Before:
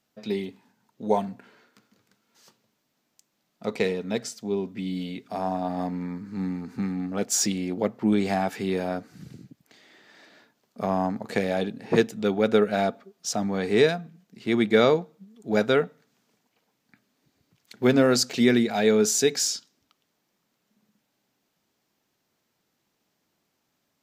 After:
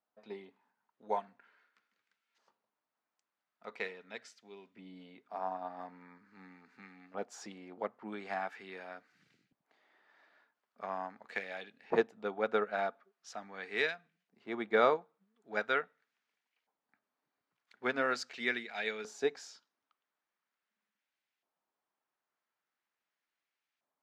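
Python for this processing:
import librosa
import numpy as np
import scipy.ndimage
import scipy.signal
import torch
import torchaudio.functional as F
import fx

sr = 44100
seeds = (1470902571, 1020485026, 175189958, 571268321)

y = fx.filter_lfo_bandpass(x, sr, shape='saw_up', hz=0.42, low_hz=870.0, high_hz=2300.0, q=1.3)
y = fx.upward_expand(y, sr, threshold_db=-39.0, expansion=1.5)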